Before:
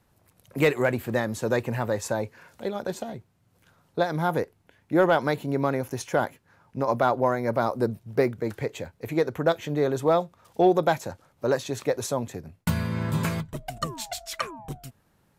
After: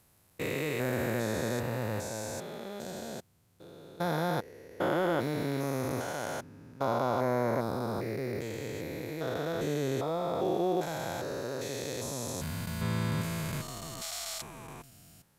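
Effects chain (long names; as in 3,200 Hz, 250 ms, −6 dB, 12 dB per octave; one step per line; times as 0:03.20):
spectrum averaged block by block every 400 ms
high-shelf EQ 2,900 Hz +9 dB
level −2.5 dB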